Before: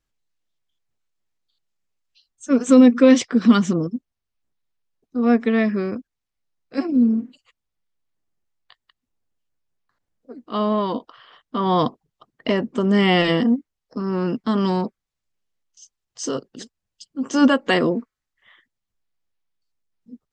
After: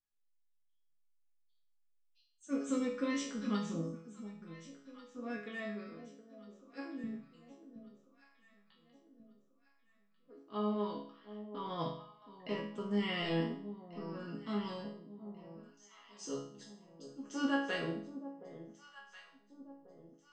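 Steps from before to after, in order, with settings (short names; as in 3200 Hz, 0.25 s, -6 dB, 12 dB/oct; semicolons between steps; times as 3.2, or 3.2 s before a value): 5.37–7.04 low shelf 310 Hz -11 dB; resonator bank C#3 minor, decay 0.55 s; on a send: echo with dull and thin repeats by turns 0.72 s, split 840 Hz, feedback 63%, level -12 dB; on the sum: gain +1 dB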